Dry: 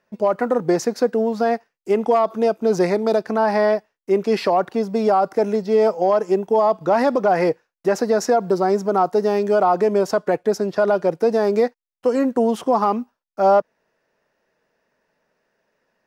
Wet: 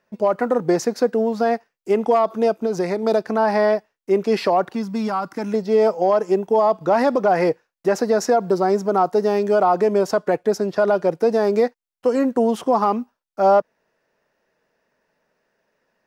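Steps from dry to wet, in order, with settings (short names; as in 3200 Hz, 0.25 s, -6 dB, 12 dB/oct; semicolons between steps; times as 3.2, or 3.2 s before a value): 2.53–3.03 compressor, threshold -18 dBFS, peak gain reduction 5.5 dB; 4.75–5.54 band shelf 540 Hz -11.5 dB 1.2 oct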